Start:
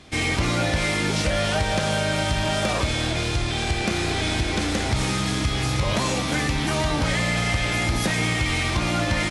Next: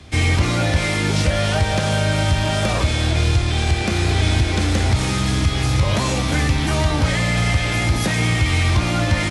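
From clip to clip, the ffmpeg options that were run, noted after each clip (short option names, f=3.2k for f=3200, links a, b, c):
-filter_complex "[0:a]equalizer=f=80:w=1.3:g=13,acrossover=split=150|440|1500[a][b][c][d];[a]alimiter=limit=-13dB:level=0:latency=1:release=438[e];[e][b][c][d]amix=inputs=4:normalize=0,volume=2dB"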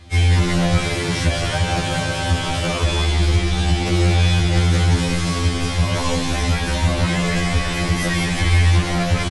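-filter_complex "[0:a]asplit=8[a][b][c][d][e][f][g][h];[b]adelay=180,afreqshift=-130,volume=-3.5dB[i];[c]adelay=360,afreqshift=-260,volume=-9.2dB[j];[d]adelay=540,afreqshift=-390,volume=-14.9dB[k];[e]adelay=720,afreqshift=-520,volume=-20.5dB[l];[f]adelay=900,afreqshift=-650,volume=-26.2dB[m];[g]adelay=1080,afreqshift=-780,volume=-31.9dB[n];[h]adelay=1260,afreqshift=-910,volume=-37.6dB[o];[a][i][j][k][l][m][n][o]amix=inputs=8:normalize=0,afftfilt=real='re*2*eq(mod(b,4),0)':imag='im*2*eq(mod(b,4),0)':win_size=2048:overlap=0.75"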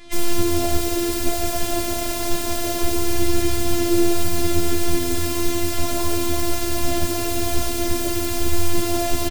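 -filter_complex "[0:a]acrossover=split=800[a][b];[b]aeval=exprs='(mod(20*val(0)+1,2)-1)/20':c=same[c];[a][c]amix=inputs=2:normalize=0,afftfilt=real='hypot(re,im)*cos(PI*b)':imag='0':win_size=512:overlap=0.75,volume=5.5dB"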